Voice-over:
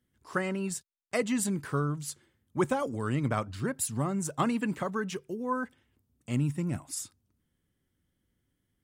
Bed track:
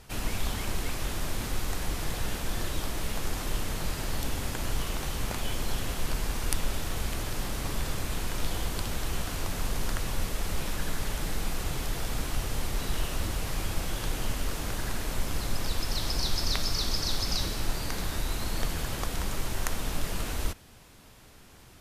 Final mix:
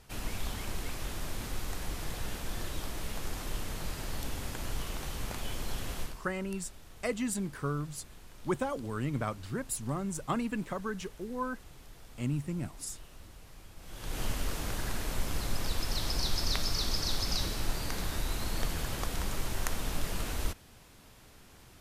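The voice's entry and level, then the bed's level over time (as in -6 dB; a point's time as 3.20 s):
5.90 s, -4.0 dB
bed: 6.02 s -5.5 dB
6.22 s -20.5 dB
13.76 s -20.5 dB
14.20 s -2.5 dB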